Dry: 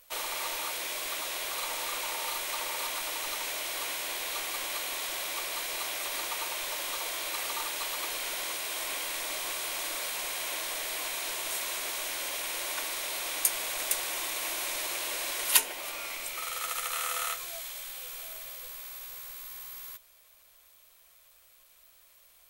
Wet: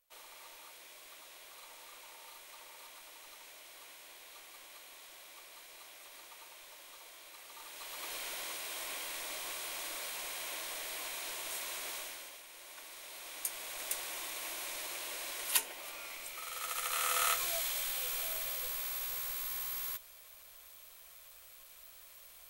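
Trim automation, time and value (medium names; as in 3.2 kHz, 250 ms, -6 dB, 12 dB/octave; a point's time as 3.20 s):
7.47 s -19 dB
8.14 s -7 dB
11.96 s -7 dB
12.46 s -19 dB
13.93 s -8 dB
16.45 s -8 dB
17.44 s +4 dB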